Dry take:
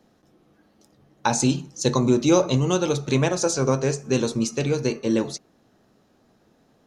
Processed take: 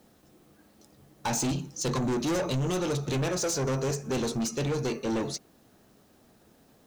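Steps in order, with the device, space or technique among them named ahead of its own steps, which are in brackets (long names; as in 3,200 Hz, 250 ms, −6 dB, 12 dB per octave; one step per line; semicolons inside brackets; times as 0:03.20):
open-reel tape (soft clipping −25.5 dBFS, distortion −6 dB; parametric band 63 Hz +4.5 dB 0.93 octaves; white noise bed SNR 38 dB)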